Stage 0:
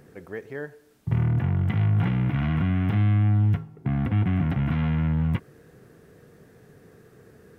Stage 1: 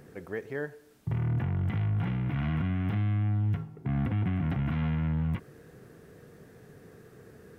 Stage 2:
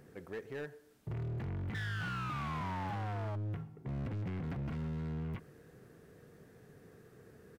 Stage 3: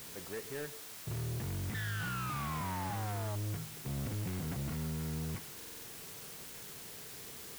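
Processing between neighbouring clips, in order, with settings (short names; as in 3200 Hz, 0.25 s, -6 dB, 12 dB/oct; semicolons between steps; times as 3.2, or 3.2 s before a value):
limiter -22.5 dBFS, peak gain reduction 9.5 dB
painted sound fall, 1.74–3.36, 610–1800 Hz -31 dBFS; overloaded stage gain 30 dB; outdoor echo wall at 21 m, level -27 dB; gain -6 dB
in parallel at -10.5 dB: requantised 6-bit, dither triangular; on the sum: stuck buffer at 5.56, samples 2048, times 5; gain -2 dB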